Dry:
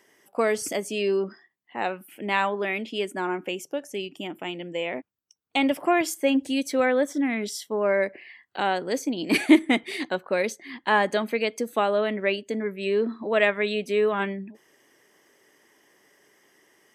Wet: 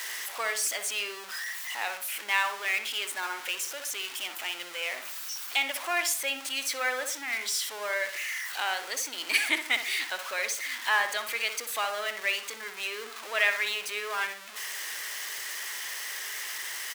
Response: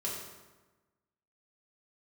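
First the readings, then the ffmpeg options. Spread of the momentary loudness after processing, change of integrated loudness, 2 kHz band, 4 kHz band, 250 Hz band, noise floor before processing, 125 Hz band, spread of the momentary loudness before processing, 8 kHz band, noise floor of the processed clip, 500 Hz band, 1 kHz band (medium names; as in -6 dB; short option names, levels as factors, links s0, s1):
8 LU, -4.5 dB, +1.0 dB, +3.5 dB, -25.0 dB, -68 dBFS, under -30 dB, 10 LU, +7.0 dB, -43 dBFS, -14.5 dB, -5.5 dB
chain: -filter_complex "[0:a]aeval=exprs='val(0)+0.5*0.0355*sgn(val(0))':c=same,highpass=1400,asplit=2[s0][s1];[s1]adelay=63,lowpass=f=2000:p=1,volume=0.422,asplit=2[s2][s3];[s3]adelay=63,lowpass=f=2000:p=1,volume=0.39,asplit=2[s4][s5];[s5]adelay=63,lowpass=f=2000:p=1,volume=0.39,asplit=2[s6][s7];[s7]adelay=63,lowpass=f=2000:p=1,volume=0.39[s8];[s0][s2][s4][s6][s8]amix=inputs=5:normalize=0"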